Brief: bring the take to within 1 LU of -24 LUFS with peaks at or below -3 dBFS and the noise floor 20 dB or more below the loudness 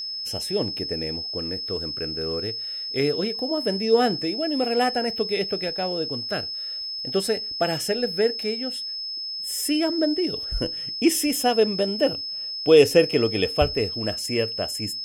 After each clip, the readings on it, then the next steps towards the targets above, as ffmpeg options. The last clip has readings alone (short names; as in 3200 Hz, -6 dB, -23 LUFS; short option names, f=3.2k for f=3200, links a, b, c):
steady tone 5200 Hz; tone level -29 dBFS; loudness -23.5 LUFS; peak -2.5 dBFS; loudness target -24.0 LUFS
-> -af "bandreject=f=5.2k:w=30"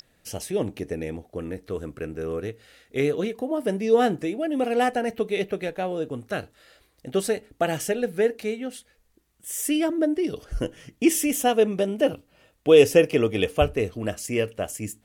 steady tone none; loudness -25.0 LUFS; peak -3.0 dBFS; loudness target -24.0 LUFS
-> -af "volume=1dB,alimiter=limit=-3dB:level=0:latency=1"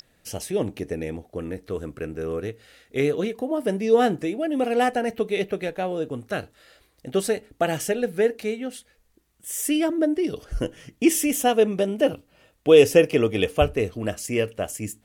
loudness -24.0 LUFS; peak -3.0 dBFS; noise floor -64 dBFS